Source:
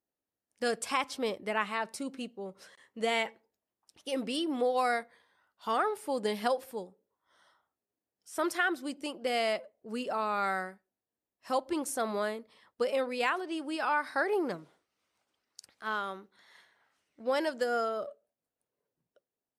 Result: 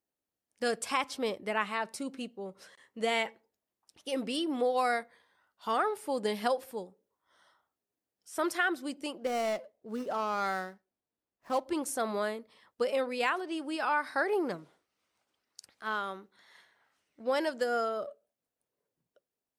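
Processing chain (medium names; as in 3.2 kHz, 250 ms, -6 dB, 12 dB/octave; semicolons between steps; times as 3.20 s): 9.17–11.66 s: median filter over 15 samples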